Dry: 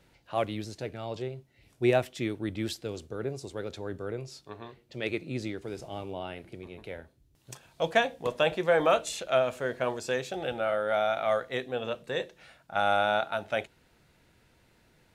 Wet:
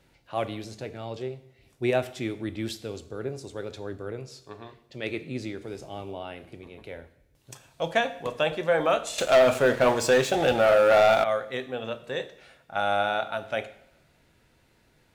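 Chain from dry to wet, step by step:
coupled-rooms reverb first 0.63 s, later 1.7 s, DRR 10.5 dB
0:09.18–0:11.24: leveller curve on the samples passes 3

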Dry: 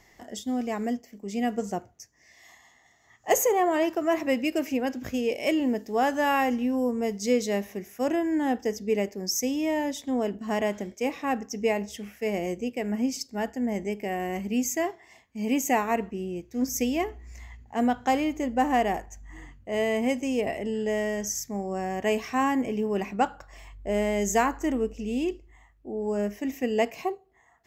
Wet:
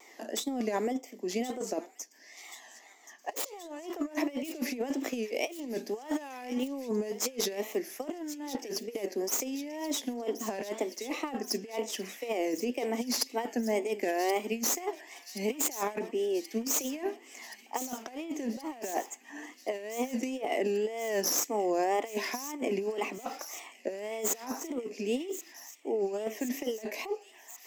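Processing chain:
stylus tracing distortion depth 0.12 ms
Butterworth high-pass 250 Hz 48 dB per octave
parametric band 1,500 Hz −7 dB 0.36 octaves
compressor whose output falls as the input rises −32 dBFS, ratio −0.5
tape wow and flutter 140 cents
on a send: delay with a high-pass on its return 1,077 ms, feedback 74%, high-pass 2,700 Hz, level −12 dB

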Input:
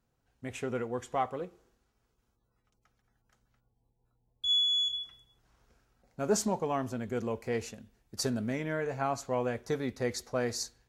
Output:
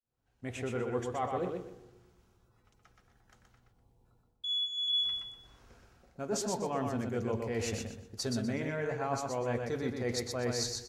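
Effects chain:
fade in at the beginning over 0.97 s
dynamic equaliser 3,800 Hz, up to +5 dB, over −43 dBFS, Q 1.7
reversed playback
downward compressor 6 to 1, threshold −40 dBFS, peak gain reduction 17.5 dB
reversed playback
high-shelf EQ 11,000 Hz −7.5 dB
repeating echo 123 ms, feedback 27%, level −4 dB
on a send at −16 dB: convolution reverb RT60 1.1 s, pre-delay 3 ms
on the sum: level +7.5 dB

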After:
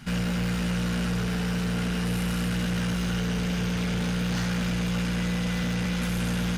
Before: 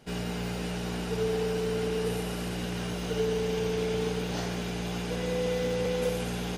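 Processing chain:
in parallel at 0 dB: brickwall limiter −29.5 dBFS, peak gain reduction 11.5 dB
on the sum: drawn EQ curve 230 Hz 0 dB, 510 Hz −28 dB, 1,400 Hz −1 dB, 3,400 Hz −4 dB
soft clipping −31 dBFS, distortion −13 dB
parametric band 680 Hz +6.5 dB 1.3 octaves
level +7.5 dB

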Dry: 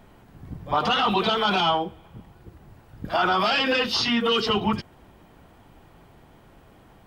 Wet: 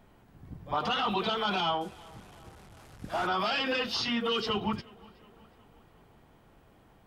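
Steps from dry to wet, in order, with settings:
0:01.81–0:03.27: linear delta modulator 64 kbit/s, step −39.5 dBFS
tape delay 364 ms, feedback 62%, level −23 dB, low-pass 3,500 Hz
level −7.5 dB

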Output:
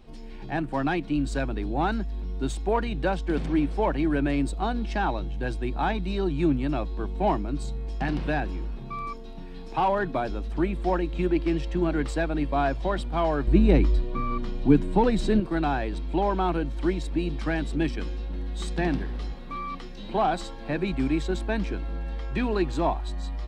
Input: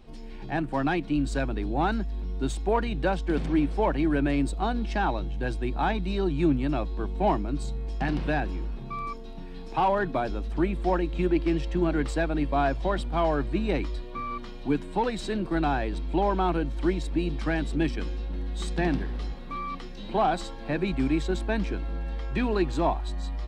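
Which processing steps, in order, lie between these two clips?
0:13.47–0:15.40: low-shelf EQ 450 Hz +11 dB

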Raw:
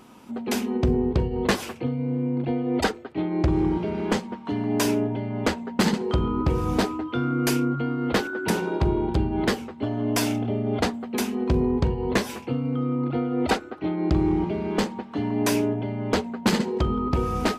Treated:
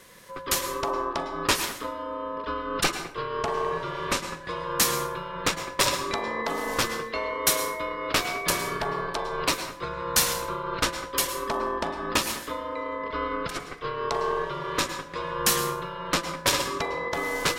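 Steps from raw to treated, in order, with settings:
spectral tilt +3 dB per octave
0:13.16–0:13.60: compressor whose output falls as the input rises −30 dBFS, ratio −1
ring modulation 770 Hz
dense smooth reverb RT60 0.6 s, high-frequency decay 0.65×, pre-delay 95 ms, DRR 9 dB
level +2 dB

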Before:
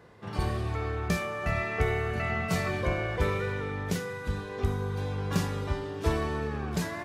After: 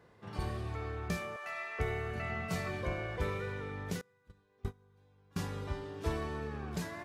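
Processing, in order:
0:01.36–0:01.79: high-pass filter 800 Hz 12 dB per octave
0:04.01–0:05.39: noise gate −24 dBFS, range −26 dB
level −7.5 dB

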